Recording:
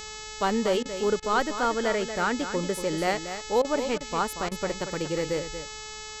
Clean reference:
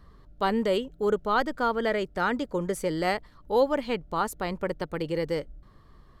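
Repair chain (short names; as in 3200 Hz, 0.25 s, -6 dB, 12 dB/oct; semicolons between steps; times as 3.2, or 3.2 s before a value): de-hum 430.7 Hz, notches 18; interpolate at 0.83/1.2/3.62/3.98/4.49, 24 ms; inverse comb 0.234 s -10 dB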